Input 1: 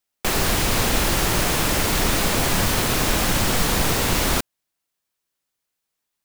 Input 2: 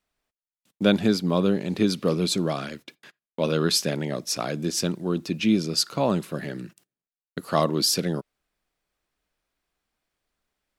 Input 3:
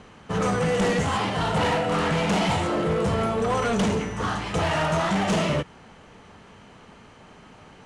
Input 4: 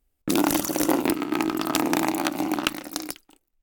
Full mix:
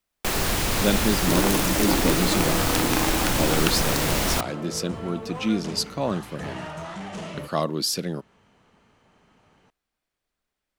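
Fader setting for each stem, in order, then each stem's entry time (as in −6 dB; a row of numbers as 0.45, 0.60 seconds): −3.5, −3.0, −12.0, −3.0 decibels; 0.00, 0.00, 1.85, 1.00 seconds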